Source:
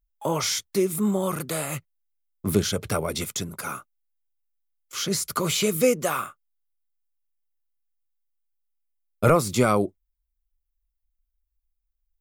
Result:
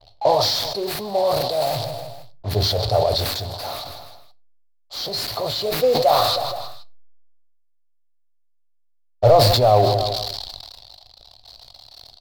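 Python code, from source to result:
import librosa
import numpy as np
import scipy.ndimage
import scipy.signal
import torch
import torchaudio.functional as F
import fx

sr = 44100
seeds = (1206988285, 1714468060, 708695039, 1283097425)

p1 = x + 0.5 * 10.0 ** (-16.0 / 20.0) * np.diff(np.sign(x), prepend=np.sign(x[:1]))
p2 = fx.env_lowpass(p1, sr, base_hz=1200.0, full_db=-18.0)
p3 = fx.curve_eq(p2, sr, hz=(110.0, 170.0, 340.0, 710.0, 1700.0, 2500.0, 4300.0, 6500.0, 15000.0), db=(0, -21, -14, 9, -28, -22, 6, -16, 10))
p4 = fx.rider(p3, sr, range_db=10, speed_s=0.5)
p5 = p3 + (p4 * 10.0 ** (0.5 / 20.0))
p6 = fx.quant_float(p5, sr, bits=2)
p7 = fx.air_absorb(p6, sr, metres=170.0)
p8 = fx.echo_feedback(p7, sr, ms=158, feedback_pct=46, wet_db=-22.0)
p9 = fx.room_shoebox(p8, sr, seeds[0], volume_m3=230.0, walls='furnished', distance_m=0.38)
y = fx.sustainer(p9, sr, db_per_s=30.0)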